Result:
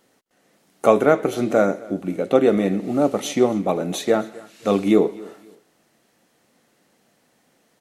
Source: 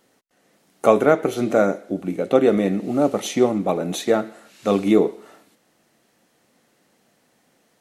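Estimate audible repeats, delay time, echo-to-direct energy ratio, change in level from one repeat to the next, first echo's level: 2, 0.261 s, -21.5 dB, -11.0 dB, -22.0 dB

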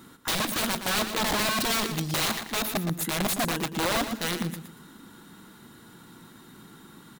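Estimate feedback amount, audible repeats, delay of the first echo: 29%, 3, 0.117 s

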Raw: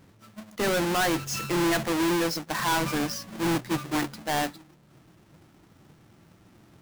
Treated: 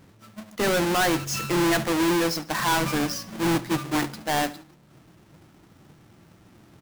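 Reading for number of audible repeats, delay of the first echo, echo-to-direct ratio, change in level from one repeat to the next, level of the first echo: 2, 72 ms, -18.0 dB, -6.0 dB, -19.0 dB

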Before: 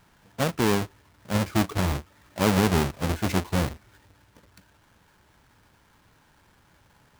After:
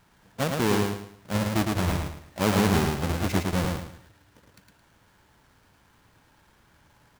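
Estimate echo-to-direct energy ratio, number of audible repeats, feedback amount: -3.0 dB, 4, 32%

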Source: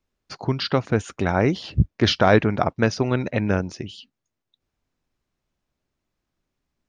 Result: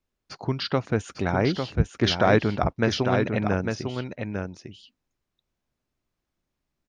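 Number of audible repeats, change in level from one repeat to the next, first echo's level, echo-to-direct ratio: 1, no steady repeat, -5.5 dB, -5.5 dB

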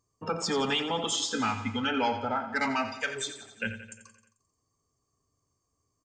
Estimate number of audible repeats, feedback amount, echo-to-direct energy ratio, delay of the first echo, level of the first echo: 6, 59%, -9.5 dB, 88 ms, -11.5 dB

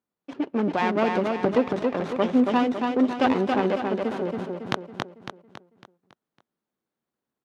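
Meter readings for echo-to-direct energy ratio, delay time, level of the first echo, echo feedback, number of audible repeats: -3.0 dB, 0.277 s, -4.0 dB, 47%, 5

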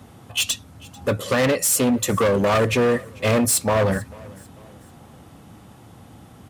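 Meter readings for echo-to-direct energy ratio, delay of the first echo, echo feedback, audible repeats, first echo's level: -22.5 dB, 0.443 s, 41%, 2, -23.5 dB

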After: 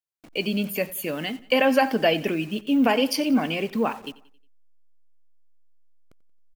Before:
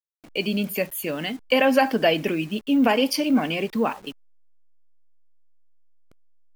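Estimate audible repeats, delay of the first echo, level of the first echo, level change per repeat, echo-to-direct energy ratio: 3, 90 ms, -20.0 dB, -6.5 dB, -19.0 dB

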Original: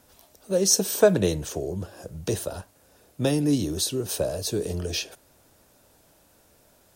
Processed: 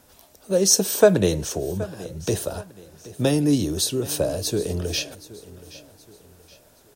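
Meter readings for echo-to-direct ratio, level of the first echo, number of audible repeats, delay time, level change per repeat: -17.5 dB, -18.0 dB, 3, 0.773 s, -8.0 dB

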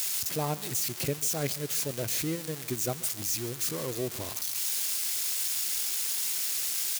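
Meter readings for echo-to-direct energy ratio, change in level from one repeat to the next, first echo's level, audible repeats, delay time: -18.0 dB, -8.5 dB, -18.5 dB, 2, 0.142 s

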